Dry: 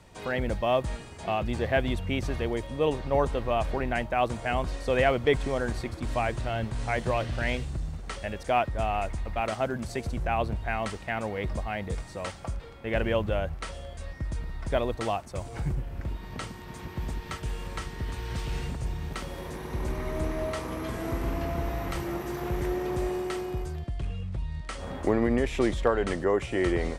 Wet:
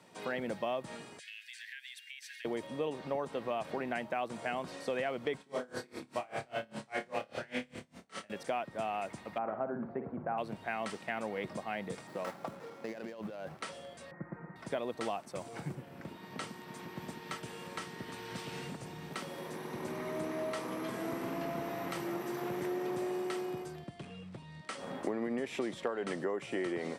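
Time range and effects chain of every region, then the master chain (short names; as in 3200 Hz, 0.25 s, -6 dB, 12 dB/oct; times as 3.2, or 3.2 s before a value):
1.19–2.45 steep high-pass 1600 Hz 96 dB/oct + compressor 12:1, threshold -39 dBFS
5.38–8.3 flutter echo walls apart 4.8 m, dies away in 0.74 s + dB-linear tremolo 5 Hz, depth 30 dB
9.38–10.38 LPF 1400 Hz 24 dB/oct + flutter echo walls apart 9.7 m, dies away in 0.35 s
12.07–13.57 median filter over 15 samples + HPF 170 Hz 6 dB/oct + negative-ratio compressor -37 dBFS
14.11–14.56 elliptic low-pass 2000 Hz + comb 5.7 ms, depth 92%
whole clip: HPF 160 Hz 24 dB/oct; notch 6700 Hz, Q 19; compressor 6:1, threshold -28 dBFS; gain -3.5 dB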